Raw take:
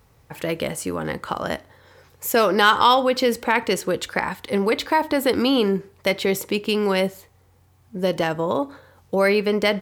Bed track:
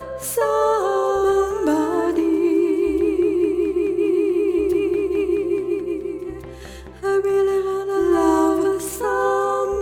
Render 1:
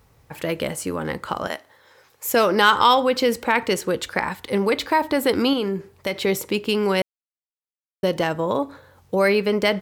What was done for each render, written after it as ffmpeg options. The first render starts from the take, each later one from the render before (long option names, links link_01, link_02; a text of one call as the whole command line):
ffmpeg -i in.wav -filter_complex "[0:a]asettb=1/sr,asplit=3[link_01][link_02][link_03];[link_01]atrim=end=1.474[link_04];[link_02]atrim=start=1.47:end=2.28,asetpts=PTS-STARTPTS,afade=type=in:duration=0.004:curve=qsin,afade=type=out:start_time=0.806:duration=0.004:curve=qsin,highpass=frequency=630:poles=1[link_05];[link_03]atrim=start=2.276[link_06];[link_04][link_05]acrossfade=duration=0.004:curve1=hsin:curve2=qsin[link_07];[link_07][link_06]acrossfade=duration=0.004:curve1=qsin:curve2=hsin,asettb=1/sr,asplit=3[link_08][link_09][link_10];[link_08]atrim=end=5.534[link_11];[link_09]atrim=start=5.53:end=6.21,asetpts=PTS-STARTPTS,afade=type=in:duration=0.004:curve=qsin,afade=type=out:start_time=0.676:duration=0.004:curve=qsin,acompressor=threshold=-23dB:ratio=2:attack=3.2:release=140:knee=1:detection=peak[link_12];[link_10]atrim=start=6.206[link_13];[link_11][link_12]acrossfade=duration=0.004:curve1=hsin:curve2=qsin[link_14];[link_14][link_13]acrossfade=duration=0.004:curve1=qsin:curve2=hsin,asplit=3[link_15][link_16][link_17];[link_15]atrim=end=7.02,asetpts=PTS-STARTPTS,afade=type=out:start_time=7.016:duration=0.004:curve=hsin[link_18];[link_16]atrim=start=7.02:end=8.03,asetpts=PTS-STARTPTS,volume=0[link_19];[link_17]atrim=start=8.03,asetpts=PTS-STARTPTS,afade=type=in:duration=0.004:curve=hsin[link_20];[link_18][link_19][link_20]concat=n=3:v=0:a=1" out.wav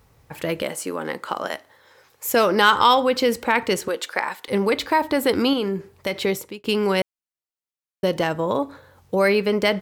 ffmpeg -i in.wav -filter_complex "[0:a]asettb=1/sr,asplit=3[link_01][link_02][link_03];[link_01]atrim=end=0.624[link_04];[link_02]atrim=start=0.62:end=1.54,asetpts=PTS-STARTPTS,afade=type=in:duration=0.004:curve=qsin,afade=type=out:start_time=0.916:duration=0.004:curve=qsin,highpass=260[link_05];[link_03]atrim=start=1.536[link_06];[link_04][link_05]acrossfade=duration=0.004:curve1=hsin:curve2=qsin[link_07];[link_07][link_06]acrossfade=duration=0.004:curve1=qsin:curve2=hsin,asettb=1/sr,asplit=3[link_08][link_09][link_10];[link_08]atrim=end=3.884[link_11];[link_09]atrim=start=3.88:end=4.48,asetpts=PTS-STARTPTS,afade=type=in:duration=0.004:curve=qsin,afade=type=out:start_time=0.596:duration=0.004:curve=qsin,highpass=430[link_12];[link_10]atrim=start=4.476[link_13];[link_11][link_12]acrossfade=duration=0.004:curve1=hsin:curve2=qsin[link_14];[link_14][link_13]acrossfade=duration=0.004:curve1=qsin:curve2=hsin,asplit=2[link_15][link_16];[link_15]atrim=end=6.64,asetpts=PTS-STARTPTS,afade=type=out:start_time=6.24:duration=0.4[link_17];[link_16]atrim=start=6.64,asetpts=PTS-STARTPTS,afade=type=in:duration=0.004:curve=hsin[link_18];[link_17][link_18]concat=n=2:v=0:a=1" out.wav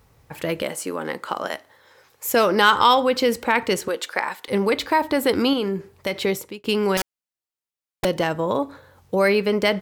ffmpeg -i in.wav -filter_complex "[0:a]asettb=1/sr,asplit=3[link_01][link_02][link_03];[link_01]atrim=end=6.974[link_04];[link_02]atrim=start=6.97:end=8.05,asetpts=PTS-STARTPTS,afade=type=in:duration=0.004:curve=qsin,afade=type=out:start_time=1.076:duration=0.004:curve=qsin,aeval=exprs='(mod(7.94*val(0)+1,2)-1)/7.94':channel_layout=same[link_05];[link_03]atrim=start=8.046[link_06];[link_04][link_05]acrossfade=duration=0.004:curve1=hsin:curve2=qsin[link_07];[link_07][link_06]acrossfade=duration=0.004:curve1=qsin:curve2=hsin" out.wav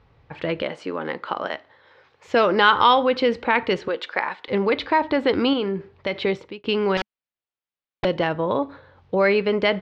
ffmpeg -i in.wav -af "lowpass=frequency=3900:width=0.5412,lowpass=frequency=3900:width=1.3066,equalizer=frequency=210:width_type=o:width=0.23:gain=-2.5" out.wav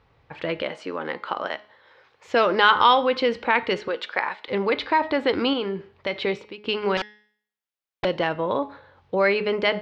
ffmpeg -i in.wav -af "lowshelf=frequency=330:gain=-6,bandreject=frequency=210.4:width_type=h:width=4,bandreject=frequency=420.8:width_type=h:width=4,bandreject=frequency=631.2:width_type=h:width=4,bandreject=frequency=841.6:width_type=h:width=4,bandreject=frequency=1052:width_type=h:width=4,bandreject=frequency=1262.4:width_type=h:width=4,bandreject=frequency=1472.8:width_type=h:width=4,bandreject=frequency=1683.2:width_type=h:width=4,bandreject=frequency=1893.6:width_type=h:width=4,bandreject=frequency=2104:width_type=h:width=4,bandreject=frequency=2314.4:width_type=h:width=4,bandreject=frequency=2524.8:width_type=h:width=4,bandreject=frequency=2735.2:width_type=h:width=4,bandreject=frequency=2945.6:width_type=h:width=4,bandreject=frequency=3156:width_type=h:width=4,bandreject=frequency=3366.4:width_type=h:width=4,bandreject=frequency=3576.8:width_type=h:width=4,bandreject=frequency=3787.2:width_type=h:width=4,bandreject=frequency=3997.6:width_type=h:width=4,bandreject=frequency=4208:width_type=h:width=4,bandreject=frequency=4418.4:width_type=h:width=4,bandreject=frequency=4628.8:width_type=h:width=4,bandreject=frequency=4839.2:width_type=h:width=4,bandreject=frequency=5049.6:width_type=h:width=4,bandreject=frequency=5260:width_type=h:width=4,bandreject=frequency=5470.4:width_type=h:width=4,bandreject=frequency=5680.8:width_type=h:width=4,bandreject=frequency=5891.2:width_type=h:width=4" out.wav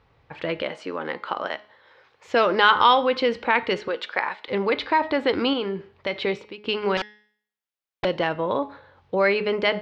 ffmpeg -i in.wav -af anull out.wav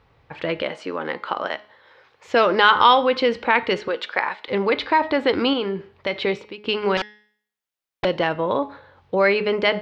ffmpeg -i in.wav -af "volume=2.5dB,alimiter=limit=-2dB:level=0:latency=1" out.wav